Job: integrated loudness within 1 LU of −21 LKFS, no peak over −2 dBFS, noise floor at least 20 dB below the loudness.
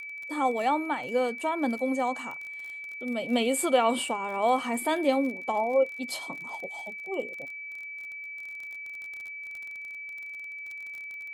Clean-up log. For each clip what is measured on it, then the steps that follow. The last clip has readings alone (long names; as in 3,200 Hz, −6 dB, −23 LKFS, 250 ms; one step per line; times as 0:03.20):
crackle rate 33 per second; interfering tone 2,300 Hz; level of the tone −37 dBFS; integrated loudness −30.0 LKFS; sample peak −12.0 dBFS; target loudness −21.0 LKFS
→ click removal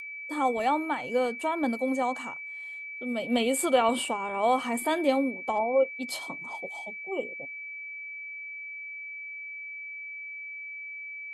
crackle rate 0.088 per second; interfering tone 2,300 Hz; level of the tone −37 dBFS
→ notch filter 2,300 Hz, Q 30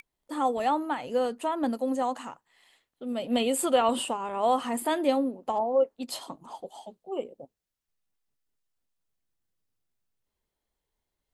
interfering tone none found; integrated loudness −28.5 LKFS; sample peak −11.5 dBFS; target loudness −21.0 LKFS
→ level +7.5 dB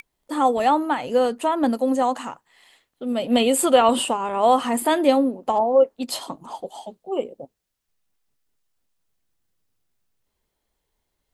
integrated loudness −21.0 LKFS; sample peak −4.0 dBFS; background noise floor −78 dBFS